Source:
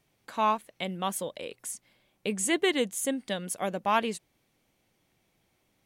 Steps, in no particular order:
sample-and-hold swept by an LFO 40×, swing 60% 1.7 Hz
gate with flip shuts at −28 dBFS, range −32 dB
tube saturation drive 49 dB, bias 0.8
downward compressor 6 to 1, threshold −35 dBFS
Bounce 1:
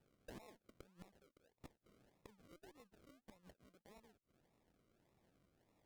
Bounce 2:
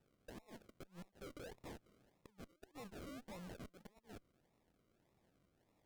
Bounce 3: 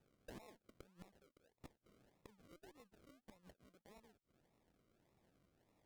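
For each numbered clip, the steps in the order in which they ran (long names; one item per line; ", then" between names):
gate with flip, then downward compressor, then sample-and-hold swept by an LFO, then tube saturation
sample-and-hold swept by an LFO, then downward compressor, then gate with flip, then tube saturation
gate with flip, then sample-and-hold swept by an LFO, then downward compressor, then tube saturation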